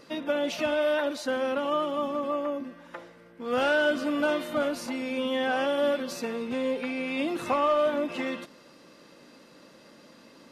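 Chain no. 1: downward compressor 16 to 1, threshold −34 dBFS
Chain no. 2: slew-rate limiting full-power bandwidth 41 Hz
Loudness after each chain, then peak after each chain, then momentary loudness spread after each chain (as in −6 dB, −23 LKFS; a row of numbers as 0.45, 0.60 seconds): −38.0, −29.5 LKFS; −23.0, −16.5 dBFS; 16, 7 LU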